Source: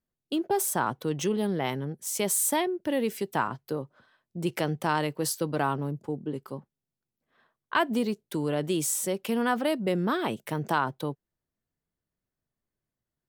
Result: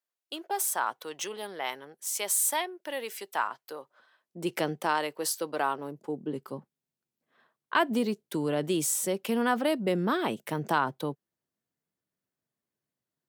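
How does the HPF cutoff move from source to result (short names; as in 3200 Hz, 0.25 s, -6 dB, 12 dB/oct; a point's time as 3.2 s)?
3.83 s 730 Hz
4.63 s 190 Hz
4.98 s 440 Hz
5.77 s 440 Hz
6.38 s 150 Hz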